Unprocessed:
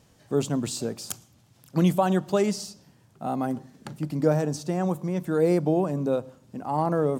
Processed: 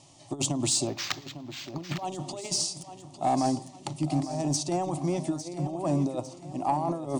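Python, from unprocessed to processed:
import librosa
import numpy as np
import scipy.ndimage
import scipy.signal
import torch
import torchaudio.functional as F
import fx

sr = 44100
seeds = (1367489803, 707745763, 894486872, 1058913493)

p1 = fx.low_shelf(x, sr, hz=110.0, db=-5.5)
p2 = fx.over_compress(p1, sr, threshold_db=-28.0, ratio=-0.5)
p3 = scipy.signal.sosfilt(scipy.signal.cheby1(8, 1.0, 10000.0, 'lowpass', fs=sr, output='sos'), p2)
p4 = fx.low_shelf(p3, sr, hz=440.0, db=-4.5)
p5 = fx.fixed_phaser(p4, sr, hz=310.0, stages=8)
p6 = 10.0 ** (-21.5 / 20.0) * np.tanh(p5 / 10.0 ** (-21.5 / 20.0))
p7 = p6 + fx.echo_feedback(p6, sr, ms=853, feedback_pct=43, wet_db=-12.0, dry=0)
p8 = fx.resample_linear(p7, sr, factor=4, at=(0.87, 2.05))
y = F.gain(torch.from_numpy(p8), 6.5).numpy()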